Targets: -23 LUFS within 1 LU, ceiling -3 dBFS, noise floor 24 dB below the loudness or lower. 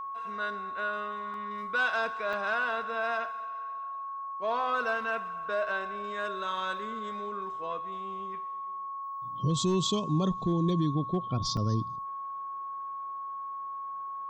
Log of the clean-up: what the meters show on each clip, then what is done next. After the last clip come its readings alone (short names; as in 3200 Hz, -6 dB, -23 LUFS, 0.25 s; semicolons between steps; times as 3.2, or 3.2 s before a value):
dropouts 3; longest dropout 2.0 ms; steady tone 1100 Hz; tone level -35 dBFS; loudness -32.0 LUFS; peak -18.0 dBFS; loudness target -23.0 LUFS
-> interpolate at 1.34/2.33/11.57, 2 ms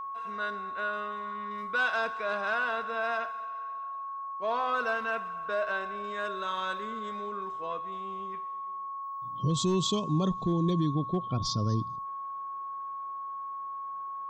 dropouts 0; steady tone 1100 Hz; tone level -35 dBFS
-> notch 1100 Hz, Q 30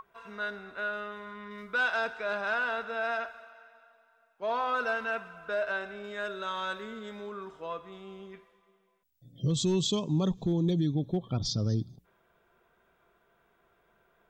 steady tone none; loudness -32.0 LUFS; peak -19.0 dBFS; loudness target -23.0 LUFS
-> gain +9 dB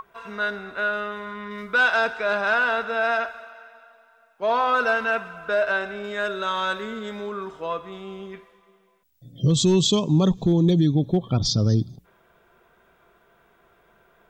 loudness -23.0 LUFS; peak -10.0 dBFS; noise floor -61 dBFS